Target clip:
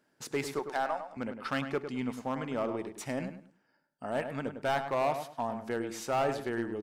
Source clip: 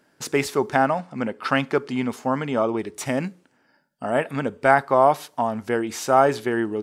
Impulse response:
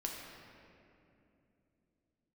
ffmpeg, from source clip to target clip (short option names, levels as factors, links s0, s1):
-filter_complex "[0:a]asettb=1/sr,asplit=3[s0][s1][s2];[s0]atrim=end=0.594[s3];[s1]atrim=start=0.59:end=1.17,asetpts=PTS-STARTPTS,afade=t=in:d=0.004:c=qsin,afade=t=out:st=0.576:d=0.004:c=qsin,highpass=470[s4];[s2]atrim=start=1.166[s5];[s3][s4]acrossfade=d=0.004:c1=hsin:c2=qsin[s6];[s6][s5]acrossfade=d=0.004:c1=qsin:c2=hsin,aeval=exprs='0.794*(cos(1*acos(clip(val(0)/0.794,-1,1)))-cos(1*PI/2))+0.0501*(cos(3*acos(clip(val(0)/0.794,-1,1)))-cos(3*PI/2))+0.0355*(cos(6*acos(clip(val(0)/0.794,-1,1)))-cos(6*PI/2))+0.0112*(cos(8*acos(clip(val(0)/0.794,-1,1)))-cos(8*PI/2))':c=same,volume=5.62,asoftclip=hard,volume=0.178,asplit=2[s7][s8];[s8]adelay=103,lowpass=f=2200:p=1,volume=0.398,asplit=2[s9][s10];[s10]adelay=103,lowpass=f=2200:p=1,volume=0.26,asplit=2[s11][s12];[s12]adelay=103,lowpass=f=2200:p=1,volume=0.26[s13];[s7][s9][s11][s13]amix=inputs=4:normalize=0,volume=0.355"